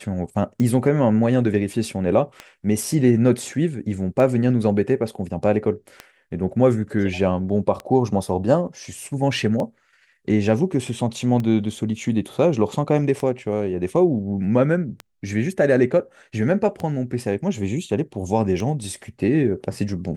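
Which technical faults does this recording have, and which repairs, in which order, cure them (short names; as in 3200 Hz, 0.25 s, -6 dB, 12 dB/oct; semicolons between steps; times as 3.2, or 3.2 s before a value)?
tick 33 1/3 rpm -15 dBFS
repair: de-click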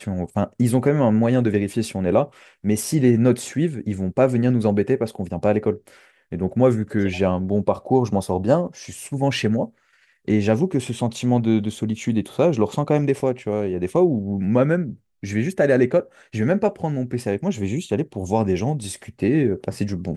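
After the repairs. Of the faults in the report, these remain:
none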